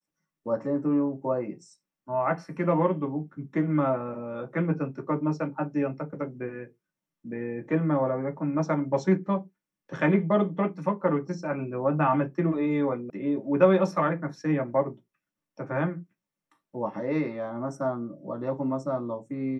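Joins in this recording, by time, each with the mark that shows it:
13.10 s: sound stops dead

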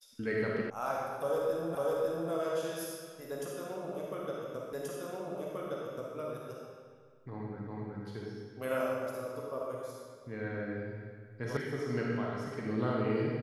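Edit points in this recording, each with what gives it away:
0.70 s: sound stops dead
1.75 s: repeat of the last 0.55 s
4.73 s: repeat of the last 1.43 s
7.67 s: repeat of the last 0.37 s
11.57 s: sound stops dead

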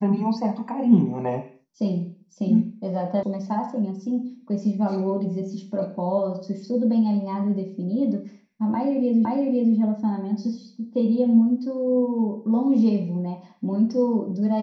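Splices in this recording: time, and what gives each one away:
3.23 s: sound stops dead
9.25 s: repeat of the last 0.51 s

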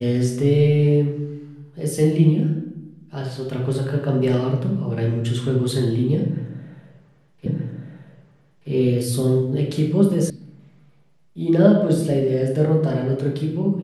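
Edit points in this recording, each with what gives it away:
7.46 s: repeat of the last 1.23 s
10.30 s: sound stops dead

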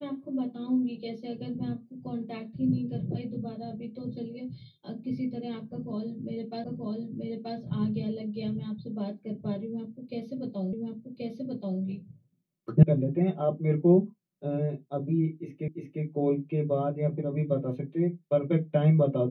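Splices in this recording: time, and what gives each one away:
6.64 s: repeat of the last 0.93 s
10.73 s: repeat of the last 1.08 s
12.83 s: sound stops dead
15.68 s: repeat of the last 0.35 s

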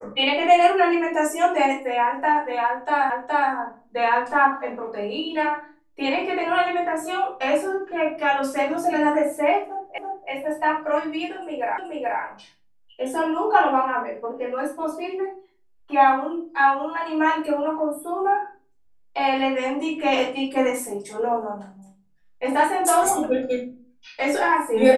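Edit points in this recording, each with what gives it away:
3.10 s: repeat of the last 0.42 s
9.98 s: repeat of the last 0.33 s
11.78 s: repeat of the last 0.43 s

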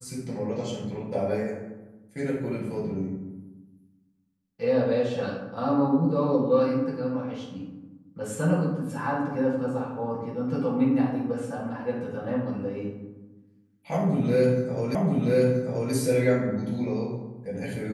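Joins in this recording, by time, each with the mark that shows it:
14.95 s: repeat of the last 0.98 s

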